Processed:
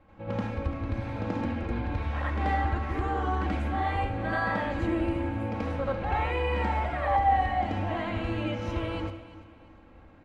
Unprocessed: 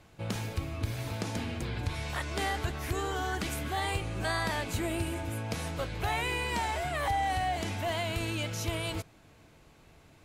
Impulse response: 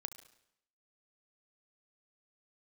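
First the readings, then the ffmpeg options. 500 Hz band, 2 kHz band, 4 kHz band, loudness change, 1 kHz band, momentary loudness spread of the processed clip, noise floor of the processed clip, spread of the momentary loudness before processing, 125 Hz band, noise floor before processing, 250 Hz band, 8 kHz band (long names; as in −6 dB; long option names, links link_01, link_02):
+4.0 dB, +0.5 dB, −7.0 dB, +3.5 dB, +5.5 dB, 6 LU, −53 dBFS, 5 LU, +3.5 dB, −58 dBFS, +6.0 dB, below −20 dB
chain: -filter_complex "[0:a]lowpass=1600,aecho=1:1:3.7:0.59,aecho=1:1:341|682|1023:0.158|0.0555|0.0194,asplit=2[link_01][link_02];[1:a]atrim=start_sample=2205,highshelf=frequency=11000:gain=11.5,adelay=83[link_03];[link_02][link_03]afir=irnorm=-1:irlink=0,volume=8dB[link_04];[link_01][link_04]amix=inputs=2:normalize=0,volume=-2dB"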